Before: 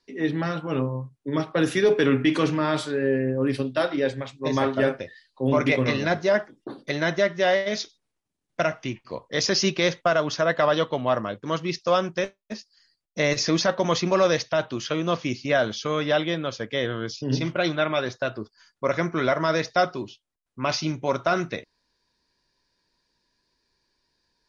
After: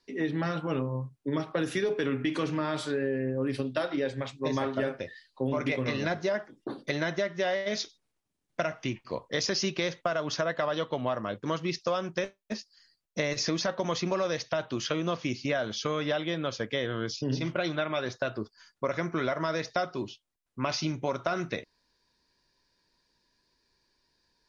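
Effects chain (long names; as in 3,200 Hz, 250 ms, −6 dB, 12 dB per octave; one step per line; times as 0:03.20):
downward compressor, threshold −26 dBFS, peak gain reduction 11 dB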